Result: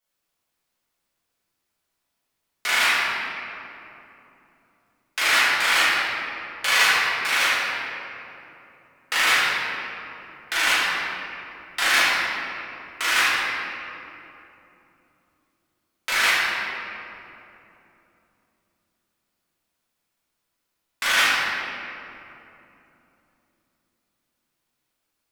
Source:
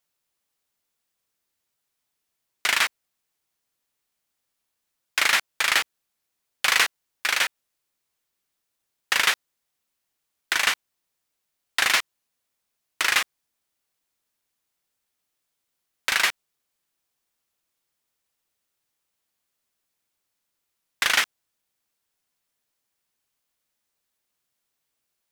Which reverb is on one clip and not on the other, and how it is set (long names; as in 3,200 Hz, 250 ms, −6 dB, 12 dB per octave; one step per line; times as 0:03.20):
rectangular room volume 130 cubic metres, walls hard, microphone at 1.5 metres
level −7 dB